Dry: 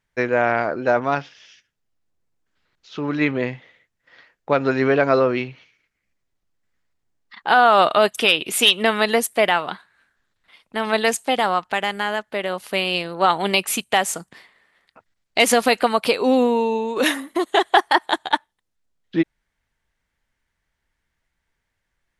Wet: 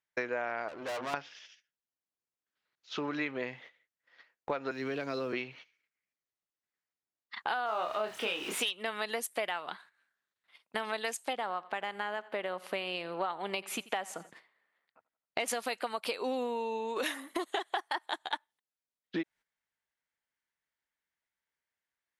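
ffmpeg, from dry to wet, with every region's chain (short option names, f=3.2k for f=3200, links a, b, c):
-filter_complex "[0:a]asettb=1/sr,asplit=3[a][b][c];[a]atrim=end=0.684[d];[b]atrim=start=0.68:end=1.14,asetpts=PTS-STARTPTS,afade=t=in:d=0.004:c=qsin,afade=t=out:st=0.456:d=0.004:c=qsin,bandreject=f=60:t=h:w=6,bandreject=f=120:t=h:w=6,bandreject=f=180:t=h:w=6,bandreject=f=240:t=h:w=6,bandreject=f=300:t=h:w=6,bandreject=f=360:t=h:w=6,bandreject=f=420:t=h:w=6,aeval=exprs='(tanh(31.6*val(0)+0.6)-tanh(0.6))/31.6':c=same[e];[c]atrim=start=1.136[f];[d][e]acrossfade=d=0.004:c1=hsin:c2=qsin[g];[g][f]acrossfade=d=0.004:c1=qsin:c2=hsin,asettb=1/sr,asplit=3[h][i][j];[h]atrim=end=4.714[k];[i]atrim=start=4.71:end=5.33,asetpts=PTS-STARTPTS,afade=t=in:d=0.004:c=qsin,afade=t=out:st=0.616:d=0.004:c=qsin,acrossover=split=320|3000[l][m][n];[m]acompressor=threshold=-34dB:ratio=3:attack=3.2:release=140:knee=2.83:detection=peak[o];[l][o][n]amix=inputs=3:normalize=0,aeval=exprs='sgn(val(0))*max(abs(val(0))-0.002,0)':c=same[p];[j]atrim=start=5.326[q];[k][p]acrossfade=d=0.004:c1=hsin:c2=qsin[r];[r][q]acrossfade=d=0.004:c1=qsin:c2=hsin,asettb=1/sr,asplit=3[s][t][u];[s]atrim=end=7.664[v];[t]atrim=start=7.66:end=8.61,asetpts=PTS-STARTPTS,afade=t=in:d=0.004:c=qsin,afade=t=out:st=0.946:d=0.004:c=qsin,aeval=exprs='val(0)+0.5*0.0841*sgn(val(0))':c=same,lowpass=f=1.8k:p=1,asplit=2[w][x];[x]adelay=28,volume=-4.5dB[y];[w][y]amix=inputs=2:normalize=0,atrim=end_sample=41895[z];[u]atrim=start=8.606[aa];[v][z]acrossfade=d=0.004:c1=hsin:c2=qsin[ab];[ab][aa]acrossfade=d=0.004:c1=qsin:c2=hsin,asettb=1/sr,asplit=3[ac][ad][ae];[ac]atrim=end=11.334[af];[ad]atrim=start=11.33:end=15.48,asetpts=PTS-STARTPTS,afade=t=in:d=0.004:c=qsin,afade=t=out:st=4.146:d=0.004:c=qsin,highshelf=f=3.1k:g=-12,aecho=1:1:87|174|261:0.0794|0.0342|0.0147,atrim=end_sample=183015[ag];[ae]atrim=start=15.476[ah];[af][ag]acrossfade=d=0.004:c1=hsin:c2=qsin[ai];[ai][ah]acrossfade=d=0.004:c1=qsin:c2=hsin,highpass=f=510:p=1,agate=range=-13dB:threshold=-47dB:ratio=16:detection=peak,acompressor=threshold=-32dB:ratio=6"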